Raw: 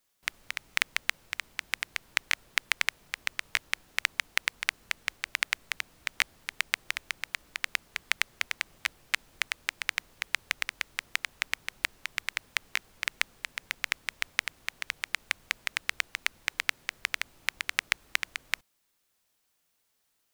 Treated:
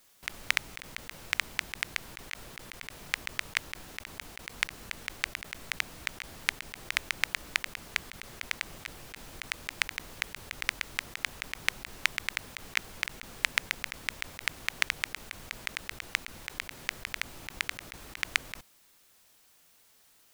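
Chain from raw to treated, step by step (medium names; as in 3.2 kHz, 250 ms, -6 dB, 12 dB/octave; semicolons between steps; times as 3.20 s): compressor with a negative ratio -35 dBFS, ratio -0.5; trim +5 dB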